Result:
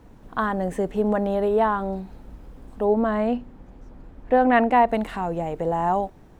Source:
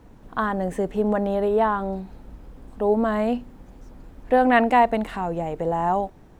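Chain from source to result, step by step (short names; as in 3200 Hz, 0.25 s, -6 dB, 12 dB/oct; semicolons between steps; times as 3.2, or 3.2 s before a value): 2.84–4.88 high shelf 5400 Hz -> 3800 Hz -11.5 dB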